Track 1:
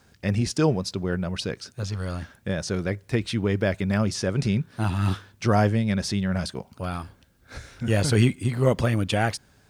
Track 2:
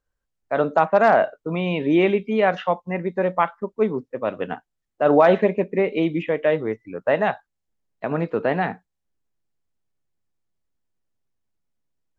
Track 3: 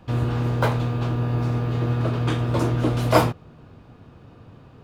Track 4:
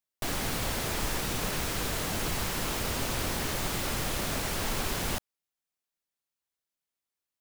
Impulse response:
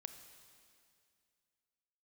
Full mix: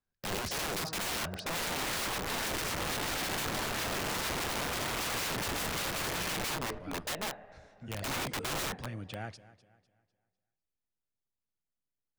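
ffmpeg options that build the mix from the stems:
-filter_complex "[0:a]agate=range=-29dB:threshold=-46dB:ratio=16:detection=peak,lowpass=6.7k,volume=-6dB,afade=t=out:st=1.2:d=0.34:silence=0.251189,asplit=4[a][b][c][d];[b]volume=-22.5dB[e];[c]volume=-18dB[f];[1:a]volume=-4dB,asplit=2[g][h];[h]volume=-12.5dB[i];[2:a]aeval=exprs='max(val(0),0)':c=same,adelay=2450,volume=-8dB,asplit=2[j][k];[k]volume=-8dB[l];[3:a]lowpass=1.5k,bandreject=f=50:t=h:w=6,bandreject=f=100:t=h:w=6,bandreject=f=150:t=h:w=6,bandreject=f=200:t=h:w=6,adelay=1350,volume=0.5dB,asplit=2[m][n];[n]volume=-12.5dB[o];[d]apad=whole_len=537250[p];[g][p]sidechaingate=range=-12dB:threshold=-59dB:ratio=16:detection=peak[q];[4:a]atrim=start_sample=2205[r];[e][i]amix=inputs=2:normalize=0[s];[s][r]afir=irnorm=-1:irlink=0[t];[f][l][o]amix=inputs=3:normalize=0,aecho=0:1:250|500|750|1000|1250:1|0.36|0.13|0.0467|0.0168[u];[a][q][j][m][t][u]amix=inputs=6:normalize=0,acrossover=split=140|2000[v][w][x];[v]acompressor=threshold=-30dB:ratio=4[y];[w]acompressor=threshold=-27dB:ratio=4[z];[x]acompressor=threshold=-39dB:ratio=4[aa];[y][z][aa]amix=inputs=3:normalize=0,aeval=exprs='(mod(29.9*val(0)+1,2)-1)/29.9':c=same"

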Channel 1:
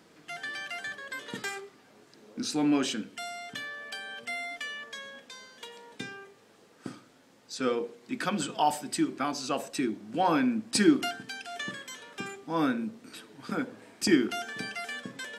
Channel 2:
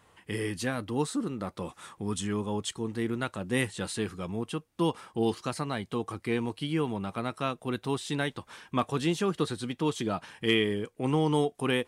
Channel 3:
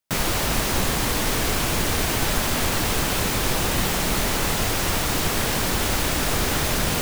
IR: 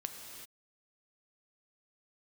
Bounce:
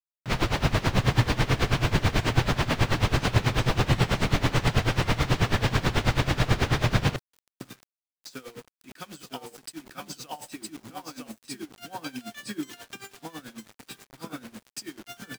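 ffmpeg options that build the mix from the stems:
-filter_complex "[0:a]adynamicequalizer=threshold=0.00631:dfrequency=2400:dqfactor=0.7:tfrequency=2400:tqfactor=0.7:attack=5:release=100:ratio=0.375:range=2.5:mode=boostabove:tftype=highshelf,adelay=750,volume=2dB,asplit=2[a][b];[b]volume=-11.5dB[c];[2:a]lowpass=3.9k,adelay=150,volume=2.5dB[d];[a]lowshelf=f=370:g=-4,acompressor=threshold=-35dB:ratio=8,volume=0dB[e];[c]aecho=0:1:954:1[f];[d][e][f]amix=inputs=3:normalize=0,equalizer=f=120:t=o:w=0.52:g=12.5,acrusher=bits=6:mix=0:aa=0.000001,aeval=exprs='val(0)*pow(10,-18*(0.5-0.5*cos(2*PI*9.2*n/s))/20)':c=same"

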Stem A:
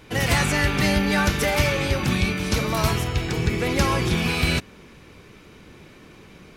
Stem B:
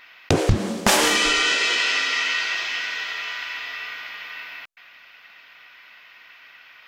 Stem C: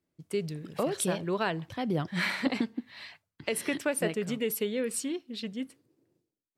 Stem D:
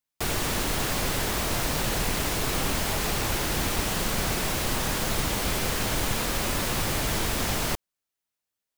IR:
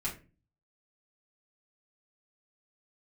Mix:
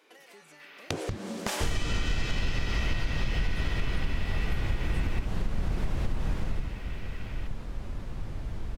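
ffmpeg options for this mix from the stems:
-filter_complex "[0:a]highpass=f=340:w=0.5412,highpass=f=340:w=1.3066,acompressor=threshold=-33dB:ratio=4,volume=-12dB[a];[1:a]acompressor=threshold=-28dB:ratio=4,adelay=600,volume=-3.5dB[b];[2:a]highpass=210,volume=-15dB[c];[3:a]aemphasis=mode=reproduction:type=riaa,adelay=1400,volume=-7.5dB,afade=t=out:st=6.31:d=0.43:silence=0.251189[d];[a][c]amix=inputs=2:normalize=0,acompressor=threshold=-58dB:ratio=2,volume=0dB[e];[b][d][e]amix=inputs=3:normalize=0,acompressor=threshold=-23dB:ratio=6"

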